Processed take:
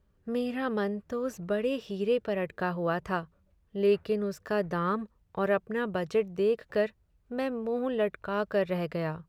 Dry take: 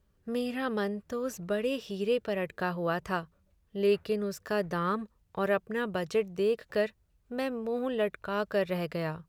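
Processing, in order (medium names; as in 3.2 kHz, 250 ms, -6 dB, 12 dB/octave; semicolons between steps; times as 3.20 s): treble shelf 3.3 kHz -8 dB; trim +1.5 dB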